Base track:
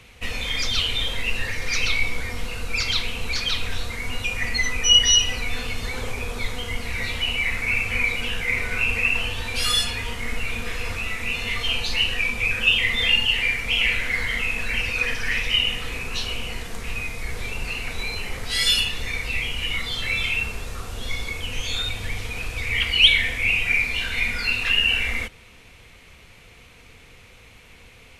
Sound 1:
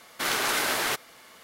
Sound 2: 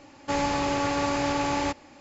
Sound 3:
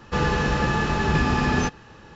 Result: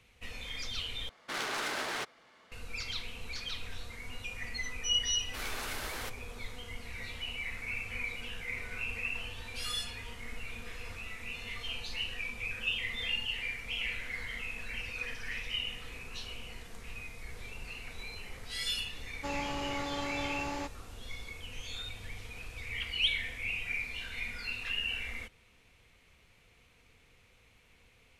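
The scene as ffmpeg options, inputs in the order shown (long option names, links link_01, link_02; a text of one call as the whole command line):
ffmpeg -i bed.wav -i cue0.wav -i cue1.wav -filter_complex "[1:a]asplit=2[link_01][link_02];[0:a]volume=-15dB[link_03];[link_01]adynamicsmooth=sensitivity=4:basefreq=4500[link_04];[link_03]asplit=2[link_05][link_06];[link_05]atrim=end=1.094[link_07];[link_04]atrim=end=1.43,asetpts=PTS-STARTPTS,volume=-8dB[link_08];[link_06]atrim=start=2.516[link_09];[link_02]atrim=end=1.43,asetpts=PTS-STARTPTS,volume=-14dB,afade=type=in:duration=0.004:curve=hsin,afade=type=out:start_time=1.426:duration=0.004:curve=hsin,adelay=5140[link_10];[2:a]atrim=end=2,asetpts=PTS-STARTPTS,volume=-11dB,afade=type=in:duration=0.004:curve=hsin,afade=type=out:start_time=1.996:duration=0.004:curve=hsin,adelay=18950[link_11];[link_07][link_08]acrossfade=duration=0.004:curve1=hsin:curve2=hsin[link_12];[link_12][link_09]acrossfade=duration=0.004:curve1=hsin:curve2=hsin[link_13];[link_13][link_10][link_11]amix=inputs=3:normalize=0" out.wav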